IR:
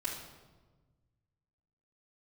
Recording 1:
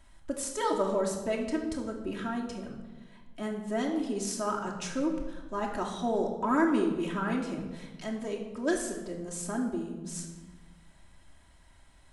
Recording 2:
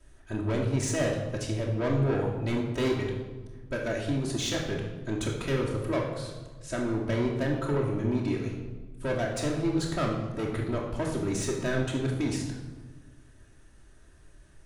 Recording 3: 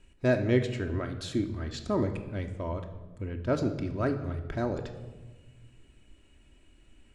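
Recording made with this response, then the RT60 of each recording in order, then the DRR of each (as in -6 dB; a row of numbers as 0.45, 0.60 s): 2; 1.3, 1.3, 1.3 s; -1.5, -8.5, 4.5 dB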